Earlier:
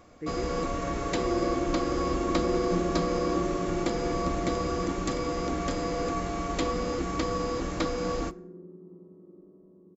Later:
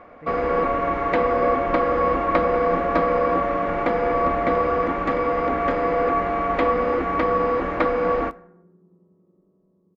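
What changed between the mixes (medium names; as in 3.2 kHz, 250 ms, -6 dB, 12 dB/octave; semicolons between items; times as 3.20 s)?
first sound: add FFT filter 150 Hz 0 dB, 290 Hz +14 dB, 2.1 kHz +11 dB, 7.9 kHz -26 dB; second sound -3.5 dB; master: add peaking EQ 320 Hz -10.5 dB 0.72 oct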